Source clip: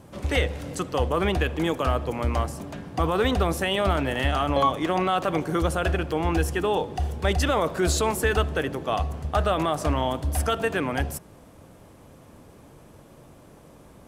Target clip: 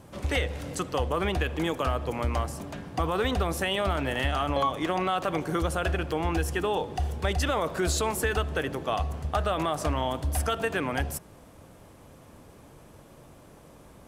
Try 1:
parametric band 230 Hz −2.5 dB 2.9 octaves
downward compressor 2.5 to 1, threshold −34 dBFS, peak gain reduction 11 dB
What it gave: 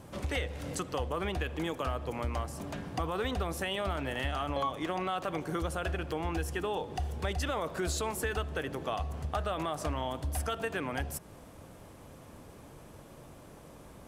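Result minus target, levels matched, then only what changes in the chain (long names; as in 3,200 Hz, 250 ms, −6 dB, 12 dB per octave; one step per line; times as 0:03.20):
downward compressor: peak gain reduction +6.5 dB
change: downward compressor 2.5 to 1, threshold −23.5 dBFS, peak gain reduction 4.5 dB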